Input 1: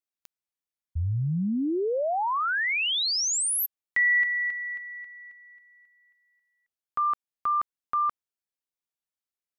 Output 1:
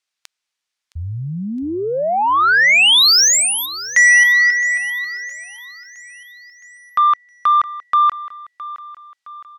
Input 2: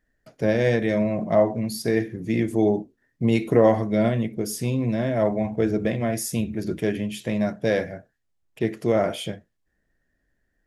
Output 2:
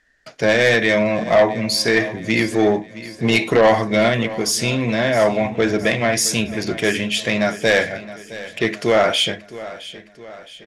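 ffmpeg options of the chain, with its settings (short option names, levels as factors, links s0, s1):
-filter_complex "[0:a]lowpass=6000,tiltshelf=f=770:g=-9,aeval=exprs='0.398*(cos(1*acos(clip(val(0)/0.398,-1,1)))-cos(1*PI/2))+0.0708*(cos(5*acos(clip(val(0)/0.398,-1,1)))-cos(5*PI/2))':c=same,asplit=2[s0][s1];[s1]aecho=0:1:665|1330|1995|2660|3325:0.15|0.0763|0.0389|0.0198|0.0101[s2];[s0][s2]amix=inputs=2:normalize=0,volume=1.68"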